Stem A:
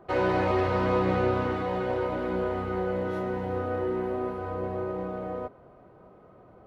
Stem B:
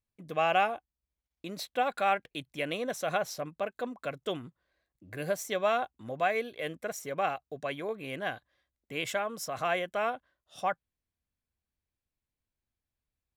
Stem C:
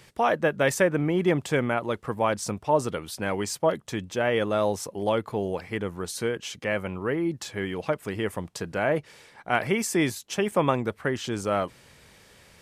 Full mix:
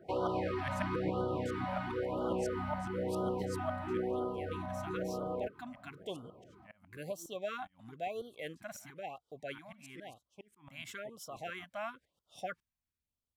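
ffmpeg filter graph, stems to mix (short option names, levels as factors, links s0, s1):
-filter_complex "[0:a]highpass=73,bandreject=f=6500:w=7.7,volume=0.668[s0];[1:a]adelay=1800,volume=0.562[s1];[2:a]aeval=exprs='val(0)*pow(10,-30*if(lt(mod(-7.3*n/s,1),2*abs(-7.3)/1000),1-mod(-7.3*n/s,1)/(2*abs(-7.3)/1000),(mod(-7.3*n/s,1)-2*abs(-7.3)/1000)/(1-2*abs(-7.3)/1000))/20)':c=same,volume=0.282,afade=t=out:st=4.01:d=0.29:silence=0.266073,asplit=2[s2][s3];[s3]apad=whole_len=668978[s4];[s1][s4]sidechaincompress=threshold=0.00224:ratio=8:attack=22:release=1320[s5];[s0][s5]amix=inputs=2:normalize=0,alimiter=level_in=1.19:limit=0.0631:level=0:latency=1:release=245,volume=0.841,volume=1[s6];[s2][s6]amix=inputs=2:normalize=0,afftfilt=real='re*(1-between(b*sr/1024,370*pow(2100/370,0.5+0.5*sin(2*PI*1*pts/sr))/1.41,370*pow(2100/370,0.5+0.5*sin(2*PI*1*pts/sr))*1.41))':imag='im*(1-between(b*sr/1024,370*pow(2100/370,0.5+0.5*sin(2*PI*1*pts/sr))/1.41,370*pow(2100/370,0.5+0.5*sin(2*PI*1*pts/sr))*1.41))':win_size=1024:overlap=0.75"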